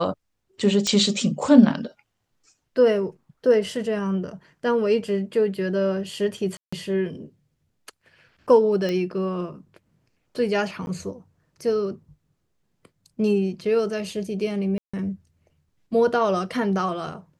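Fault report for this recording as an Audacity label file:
0.870000	0.870000	pop -10 dBFS
6.570000	6.720000	gap 0.155 s
8.890000	8.890000	pop -15 dBFS
10.860000	10.870000	gap
14.780000	14.940000	gap 0.155 s

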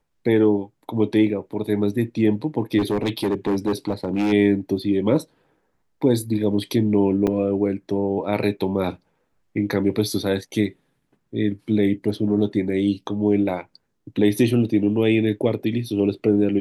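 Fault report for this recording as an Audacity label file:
2.780000	4.330000	clipped -17 dBFS
7.270000	7.270000	gap 4.2 ms

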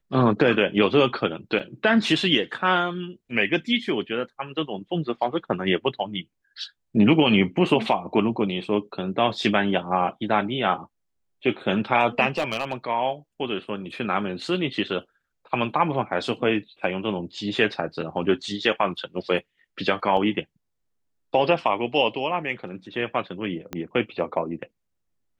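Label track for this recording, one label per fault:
1.590000	1.600000	gap 6.1 ms
12.370000	12.730000	clipped -19 dBFS
20.170000	20.170000	gap 2.9 ms
23.730000	23.730000	pop -16 dBFS

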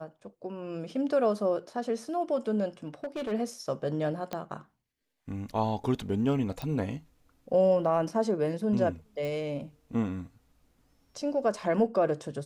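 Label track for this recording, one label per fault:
2.850000	3.330000	clipped -30 dBFS
4.330000	4.330000	pop -19 dBFS
6.620000	6.620000	pop
9.250000	9.250000	pop

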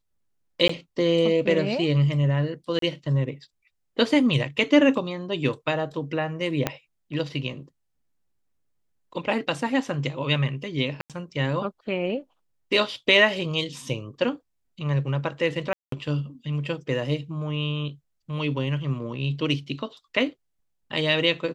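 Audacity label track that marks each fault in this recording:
0.680000	0.690000	gap 14 ms
2.790000	2.820000	gap 33 ms
6.670000	6.670000	pop -8 dBFS
11.010000	11.100000	gap 87 ms
15.730000	15.920000	gap 0.193 s

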